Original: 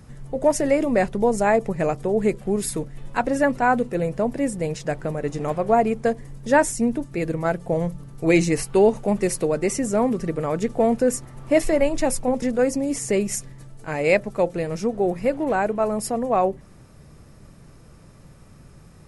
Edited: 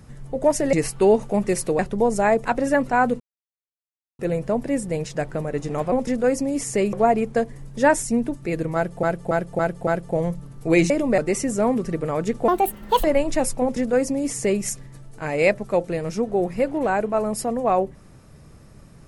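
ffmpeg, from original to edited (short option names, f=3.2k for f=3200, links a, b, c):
-filter_complex "[0:a]asplit=15[a][b][c][d][e][f][g][h][i][j][k][l][m][n][o];[a]atrim=end=0.732[p];[b]atrim=start=8.468:end=9.532[q];[c]atrim=start=1.008:end=1.672[r];[d]atrim=start=3.138:end=3.89,asetpts=PTS-STARTPTS,afade=t=out:st=0.748:d=0.004:c=hsin,apad=pad_dur=0.99[s];[e]atrim=start=3.89:end=5.622,asetpts=PTS-STARTPTS,afade=t=in:d=0.004:c=hsin[t];[f]atrim=start=12.268:end=13.282[u];[g]atrim=start=5.618:end=7.722[v];[h]atrim=start=7.438:end=7.722[w];[i]atrim=start=7.438:end=7.722[x];[j]atrim=start=7.438:end=7.722[y];[k]atrim=start=7.438:end=8.472[z];[l]atrim=start=0.728:end=1.012[aa];[m]atrim=start=9.528:end=10.834[ab];[n]atrim=start=10.83:end=11.7,asetpts=PTS-STARTPTS,asetrate=68355,aresample=44100[ac];[o]atrim=start=11.696[ad];[p][q]acrossfade=d=0.004:c1=hsin:c2=hsin[ae];[ae][r]acrossfade=d=0.004:c1=hsin:c2=hsin[af];[s][t]concat=n=2:v=0:a=1[ag];[af][ag]acrossfade=d=0.004:c1=hsin:c2=hsin[ah];[ah][u]acrossfade=d=0.004:c1=hsin:c2=hsin[ai];[ai][v]acrossfade=d=0.004:c1=hsin:c2=hsin[aj];[aj][w]acrossfade=d=0.004:c1=hsin:c2=hsin[ak];[ak][x]acrossfade=d=0.004:c1=hsin:c2=hsin[al];[al][y]acrossfade=d=0.004:c1=hsin:c2=hsin[am];[am][z]acrossfade=d=0.004:c1=hsin:c2=hsin[an];[an][aa]acrossfade=d=0.004:c1=hsin:c2=hsin[ao];[ao][ab]acrossfade=d=0.004:c1=hsin:c2=hsin[ap];[ap][ac]acrossfade=d=0.004:c1=hsin:c2=hsin[aq];[aq][ad]acrossfade=d=0.004:c1=hsin:c2=hsin"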